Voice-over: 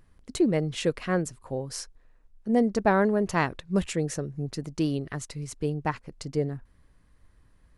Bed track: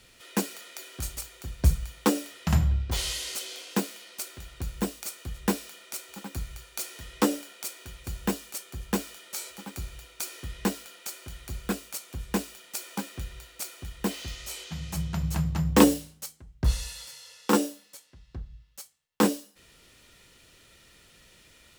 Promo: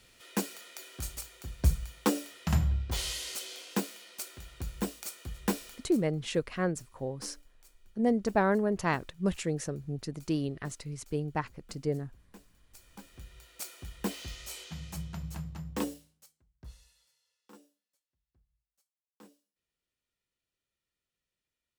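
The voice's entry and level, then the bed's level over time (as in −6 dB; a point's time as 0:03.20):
5.50 s, −4.0 dB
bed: 0:05.74 −4 dB
0:06.16 −26 dB
0:12.50 −26 dB
0:13.62 −4.5 dB
0:14.66 −4.5 dB
0:17.62 −34 dB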